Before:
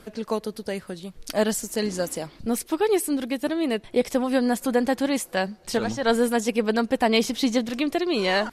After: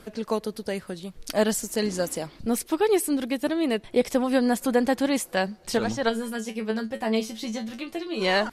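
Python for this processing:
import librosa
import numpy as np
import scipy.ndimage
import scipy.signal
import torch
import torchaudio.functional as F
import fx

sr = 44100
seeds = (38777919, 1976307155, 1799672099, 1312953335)

y = fx.comb_fb(x, sr, f0_hz=110.0, decay_s=0.16, harmonics='all', damping=0.0, mix_pct=100, at=(6.08, 8.2), fade=0.02)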